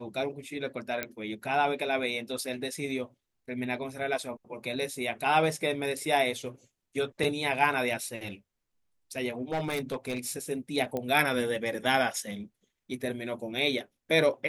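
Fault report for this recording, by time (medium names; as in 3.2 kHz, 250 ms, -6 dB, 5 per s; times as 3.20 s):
1.03 s: pop -14 dBFS
9.52–10.37 s: clipped -26.5 dBFS
10.97 s: pop -19 dBFS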